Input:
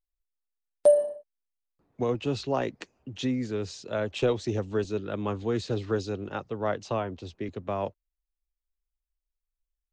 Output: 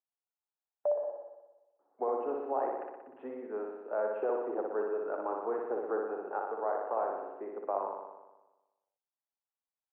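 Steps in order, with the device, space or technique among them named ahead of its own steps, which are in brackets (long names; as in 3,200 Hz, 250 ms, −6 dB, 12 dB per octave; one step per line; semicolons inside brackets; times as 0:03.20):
laptop speaker (high-pass filter 370 Hz 24 dB per octave; parametric band 800 Hz +9 dB 0.59 octaves; parametric band 2,700 Hz +8.5 dB 0.47 octaves; brickwall limiter −18.5 dBFS, peak gain reduction 11.5 dB)
Butterworth low-pass 1,500 Hz 36 dB per octave
flutter between parallel walls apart 10.4 metres, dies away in 1.1 s
level −5 dB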